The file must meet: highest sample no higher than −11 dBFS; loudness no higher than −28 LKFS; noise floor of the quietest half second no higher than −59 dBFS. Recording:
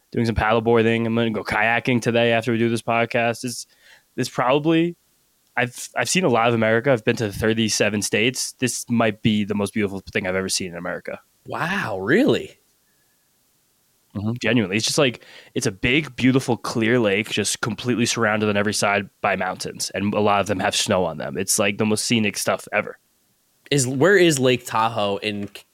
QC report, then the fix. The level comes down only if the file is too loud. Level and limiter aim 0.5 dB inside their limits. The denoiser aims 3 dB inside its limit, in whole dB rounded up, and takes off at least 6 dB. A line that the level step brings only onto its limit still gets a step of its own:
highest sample −5.5 dBFS: out of spec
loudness −20.5 LKFS: out of spec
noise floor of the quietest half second −64 dBFS: in spec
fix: level −8 dB

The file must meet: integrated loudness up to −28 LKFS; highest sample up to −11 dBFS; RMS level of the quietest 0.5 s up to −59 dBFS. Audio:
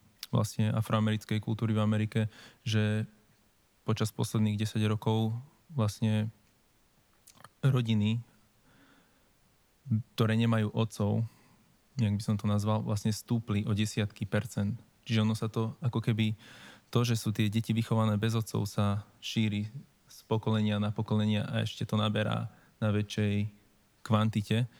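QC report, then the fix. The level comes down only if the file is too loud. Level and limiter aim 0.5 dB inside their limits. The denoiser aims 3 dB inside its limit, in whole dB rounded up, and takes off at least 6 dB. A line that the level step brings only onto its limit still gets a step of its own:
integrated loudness −31.0 LKFS: in spec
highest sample −12.0 dBFS: in spec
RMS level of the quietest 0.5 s −67 dBFS: in spec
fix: no processing needed

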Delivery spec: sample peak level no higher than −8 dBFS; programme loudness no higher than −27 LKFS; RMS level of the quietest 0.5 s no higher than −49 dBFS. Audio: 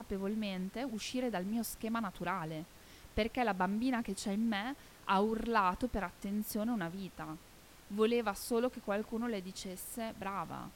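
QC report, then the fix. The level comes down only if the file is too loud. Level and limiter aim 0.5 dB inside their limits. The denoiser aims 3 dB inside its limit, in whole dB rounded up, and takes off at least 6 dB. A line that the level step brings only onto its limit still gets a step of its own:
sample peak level −18.0 dBFS: in spec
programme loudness −36.5 LKFS: in spec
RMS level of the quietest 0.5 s −58 dBFS: in spec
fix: no processing needed

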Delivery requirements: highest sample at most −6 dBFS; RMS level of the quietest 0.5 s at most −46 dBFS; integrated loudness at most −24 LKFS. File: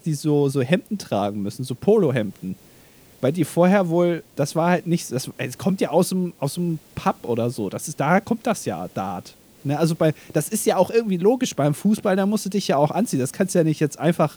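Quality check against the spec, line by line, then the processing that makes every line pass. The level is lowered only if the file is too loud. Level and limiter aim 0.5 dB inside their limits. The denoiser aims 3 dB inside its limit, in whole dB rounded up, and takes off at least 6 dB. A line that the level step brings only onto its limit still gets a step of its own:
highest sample −3.0 dBFS: out of spec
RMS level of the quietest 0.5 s −50 dBFS: in spec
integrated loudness −22.0 LKFS: out of spec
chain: level −2.5 dB
brickwall limiter −6.5 dBFS

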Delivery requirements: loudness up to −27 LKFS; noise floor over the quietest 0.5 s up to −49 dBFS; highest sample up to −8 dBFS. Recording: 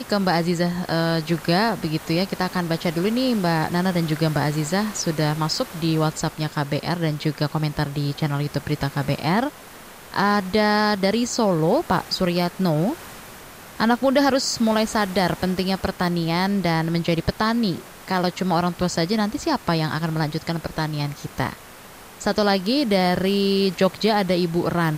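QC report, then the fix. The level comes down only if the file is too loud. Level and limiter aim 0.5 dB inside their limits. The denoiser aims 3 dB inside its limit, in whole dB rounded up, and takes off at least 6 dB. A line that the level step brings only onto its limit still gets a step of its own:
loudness −22.0 LKFS: out of spec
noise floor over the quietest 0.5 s −43 dBFS: out of spec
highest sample −4.5 dBFS: out of spec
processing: broadband denoise 6 dB, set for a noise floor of −43 dBFS
level −5.5 dB

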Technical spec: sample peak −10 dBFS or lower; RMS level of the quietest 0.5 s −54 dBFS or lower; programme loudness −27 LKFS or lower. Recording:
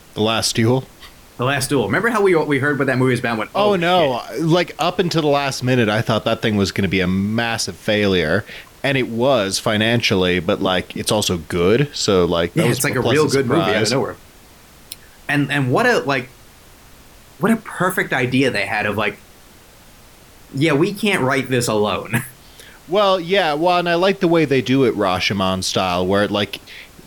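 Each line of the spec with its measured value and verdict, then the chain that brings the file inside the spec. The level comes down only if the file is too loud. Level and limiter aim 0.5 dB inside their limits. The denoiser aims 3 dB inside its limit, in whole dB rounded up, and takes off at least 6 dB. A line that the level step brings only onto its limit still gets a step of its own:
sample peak −5.5 dBFS: out of spec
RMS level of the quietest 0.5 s −45 dBFS: out of spec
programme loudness −17.5 LKFS: out of spec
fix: level −10 dB

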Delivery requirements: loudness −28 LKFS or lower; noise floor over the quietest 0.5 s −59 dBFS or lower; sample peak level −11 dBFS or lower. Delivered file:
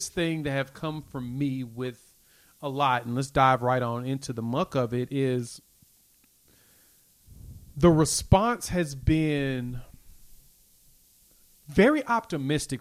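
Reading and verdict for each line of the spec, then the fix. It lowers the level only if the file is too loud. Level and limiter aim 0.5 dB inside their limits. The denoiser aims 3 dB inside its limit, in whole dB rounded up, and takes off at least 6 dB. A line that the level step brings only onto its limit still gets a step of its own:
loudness −26.5 LKFS: out of spec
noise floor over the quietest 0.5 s −62 dBFS: in spec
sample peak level −5.0 dBFS: out of spec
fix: level −2 dB
brickwall limiter −11.5 dBFS

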